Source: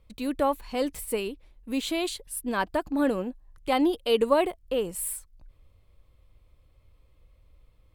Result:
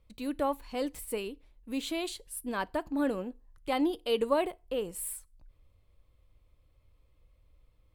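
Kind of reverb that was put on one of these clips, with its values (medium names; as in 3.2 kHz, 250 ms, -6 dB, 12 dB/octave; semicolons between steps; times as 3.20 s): FDN reverb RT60 0.33 s, low-frequency decay 0.9×, high-frequency decay 0.85×, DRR 19 dB; trim -5.5 dB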